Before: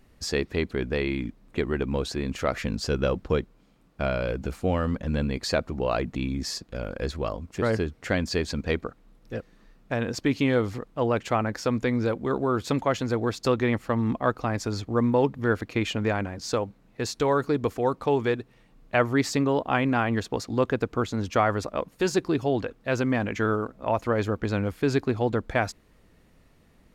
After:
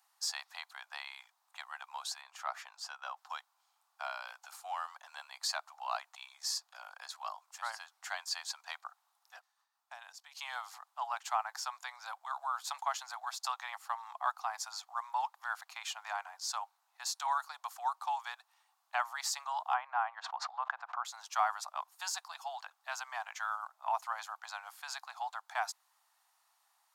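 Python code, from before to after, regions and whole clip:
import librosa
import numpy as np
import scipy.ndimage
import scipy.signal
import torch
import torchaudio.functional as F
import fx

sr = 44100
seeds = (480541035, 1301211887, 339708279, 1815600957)

y = fx.chain(x, sr, fx.high_shelf(hz=3400.0, db=-10.0),
    fx.notch(hz=4100.0, q=30.0), at=(2.21, 3.17))
y = fx.chain(y, sr, fx.dynamic_eq(hz=1100.0, q=1.0, threshold_db=-43.0, ratio=4.0, max_db=-5),
    fx.level_steps(step_db=16), at=(9.39, 10.37))
y = fx.chain(y, sr, fx.lowpass(hz=1700.0, slope=12),
    fx.pre_swell(db_per_s=70.0), at=(19.74, 21.05))
y = scipy.signal.sosfilt(scipy.signal.butter(12, 770.0, 'highpass', fs=sr, output='sos'), y)
y = fx.peak_eq(y, sr, hz=2200.0, db=-14.0, octaves=1.5)
y = y * 10.0 ** (1.0 / 20.0)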